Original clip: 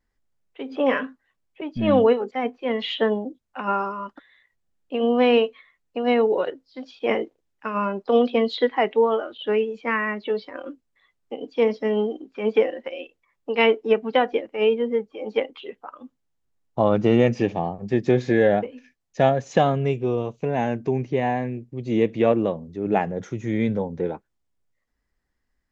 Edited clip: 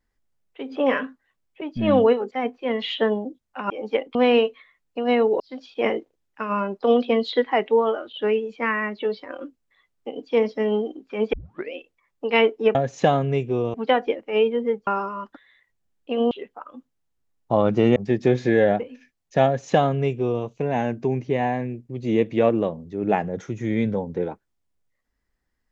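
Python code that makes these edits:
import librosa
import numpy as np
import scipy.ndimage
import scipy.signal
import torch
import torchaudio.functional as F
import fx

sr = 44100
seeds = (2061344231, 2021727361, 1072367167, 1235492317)

y = fx.edit(x, sr, fx.swap(start_s=3.7, length_s=1.44, other_s=15.13, other_length_s=0.45),
    fx.cut(start_s=6.39, length_s=0.26),
    fx.tape_start(start_s=12.58, length_s=0.4),
    fx.cut(start_s=17.23, length_s=0.56),
    fx.duplicate(start_s=19.28, length_s=0.99, to_s=14.0), tone=tone)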